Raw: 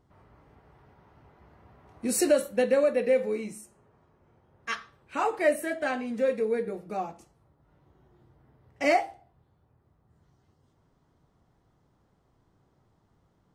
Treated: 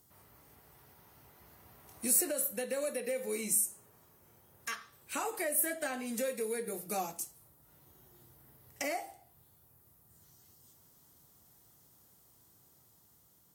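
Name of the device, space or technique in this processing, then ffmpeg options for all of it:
FM broadcast chain: -filter_complex "[0:a]highpass=59,dynaudnorm=framelen=900:gausssize=5:maxgain=3dB,acrossover=split=550|2200[link_01][link_02][link_03];[link_01]acompressor=threshold=-27dB:ratio=4[link_04];[link_02]acompressor=threshold=-27dB:ratio=4[link_05];[link_03]acompressor=threshold=-49dB:ratio=4[link_06];[link_04][link_05][link_06]amix=inputs=3:normalize=0,aemphasis=mode=production:type=75fm,alimiter=limit=-22.5dB:level=0:latency=1:release=432,asoftclip=type=hard:threshold=-23.5dB,lowpass=frequency=15000:width=0.5412,lowpass=frequency=15000:width=1.3066,aemphasis=mode=production:type=75fm,volume=-4dB"

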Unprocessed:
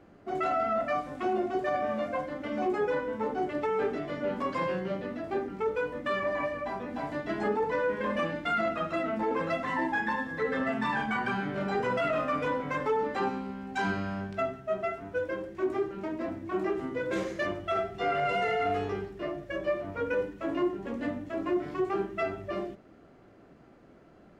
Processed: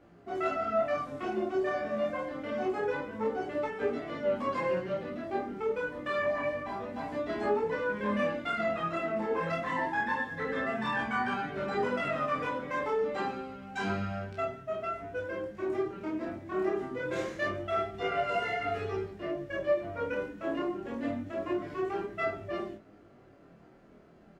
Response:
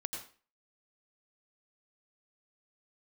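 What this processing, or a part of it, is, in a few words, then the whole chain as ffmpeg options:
double-tracked vocal: -filter_complex "[0:a]asplit=2[link_01][link_02];[link_02]adelay=29,volume=-3dB[link_03];[link_01][link_03]amix=inputs=2:normalize=0,flanger=delay=17:depth=7.2:speed=0.27"

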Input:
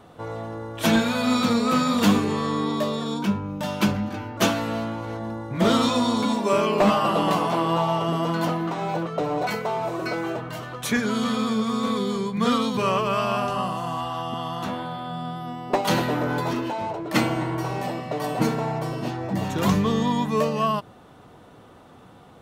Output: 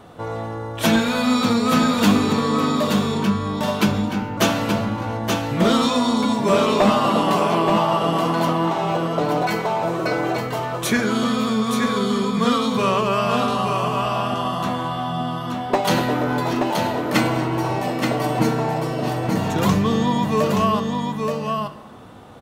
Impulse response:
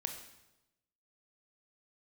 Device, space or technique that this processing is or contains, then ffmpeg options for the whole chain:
compressed reverb return: -filter_complex "[0:a]aecho=1:1:876:0.531,asplit=2[link_01][link_02];[1:a]atrim=start_sample=2205[link_03];[link_02][link_03]afir=irnorm=-1:irlink=0,acompressor=threshold=-24dB:ratio=6,volume=-1.5dB[link_04];[link_01][link_04]amix=inputs=2:normalize=0"

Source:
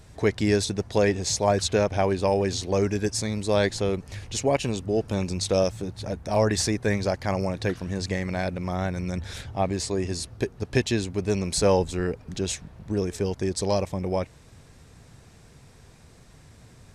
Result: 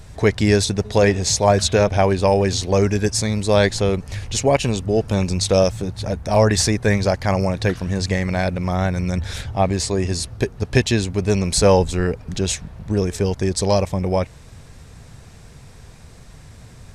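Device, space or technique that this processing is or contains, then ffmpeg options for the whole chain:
low shelf boost with a cut just above: -filter_complex "[0:a]asplit=3[link_01][link_02][link_03];[link_01]afade=type=out:start_time=0.84:duration=0.02[link_04];[link_02]bandreject=frequency=210.6:width_type=h:width=4,bandreject=frequency=421.2:width_type=h:width=4,bandreject=frequency=631.8:width_type=h:width=4,bandreject=frequency=842.4:width_type=h:width=4,bandreject=frequency=1053:width_type=h:width=4,bandreject=frequency=1263.6:width_type=h:width=4,bandreject=frequency=1474.2:width_type=h:width=4,bandreject=frequency=1684.8:width_type=h:width=4,bandreject=frequency=1895.4:width_type=h:width=4,bandreject=frequency=2106:width_type=h:width=4,bandreject=frequency=2316.6:width_type=h:width=4,bandreject=frequency=2527.2:width_type=h:width=4,bandreject=frequency=2737.8:width_type=h:width=4,bandreject=frequency=2948.4:width_type=h:width=4,bandreject=frequency=3159:width_type=h:width=4,bandreject=frequency=3369.6:width_type=h:width=4,bandreject=frequency=3580.2:width_type=h:width=4,bandreject=frequency=3790.8:width_type=h:width=4,bandreject=frequency=4001.4:width_type=h:width=4,afade=type=in:start_time=0.84:duration=0.02,afade=type=out:start_time=1.88:duration=0.02[link_05];[link_03]afade=type=in:start_time=1.88:duration=0.02[link_06];[link_04][link_05][link_06]amix=inputs=3:normalize=0,lowshelf=frequency=64:gain=6.5,equalizer=frequency=320:width_type=o:width=0.68:gain=-3.5,volume=7dB"

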